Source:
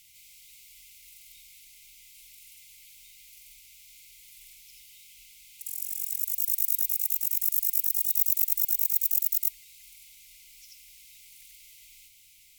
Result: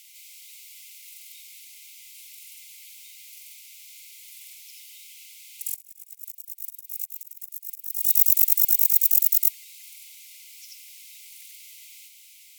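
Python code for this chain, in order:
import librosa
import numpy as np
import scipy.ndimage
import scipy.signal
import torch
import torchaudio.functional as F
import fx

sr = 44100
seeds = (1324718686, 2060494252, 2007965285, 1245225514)

y = fx.highpass(x, sr, hz=1100.0, slope=6)
y = fx.auto_swell(y, sr, attack_ms=578.0, at=(5.74, 8.02), fade=0.02)
y = y * librosa.db_to_amplitude(6.5)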